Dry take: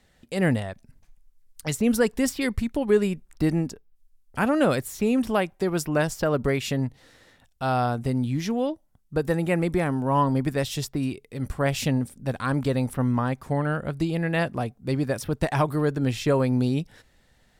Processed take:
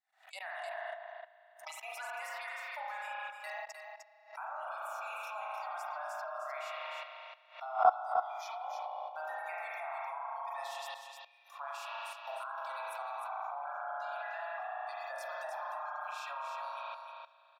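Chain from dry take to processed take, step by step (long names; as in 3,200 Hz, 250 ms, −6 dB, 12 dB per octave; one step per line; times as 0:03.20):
floating-point word with a short mantissa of 6 bits
Butterworth high-pass 650 Hz 96 dB per octave
notch filter 3,100 Hz, Q 13
brickwall limiter −24.5 dBFS, peak gain reduction 10.5 dB
noise reduction from a noise print of the clip's start 19 dB
spring reverb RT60 2 s, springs 35 ms, chirp 55 ms, DRR −4 dB
dynamic equaliser 960 Hz, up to +6 dB, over −41 dBFS, Q 0.91
output level in coarse steps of 21 dB
high-shelf EQ 2,500 Hz −10.5 dB
single-tap delay 305 ms −6 dB
background raised ahead of every attack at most 150 dB per second
level +2 dB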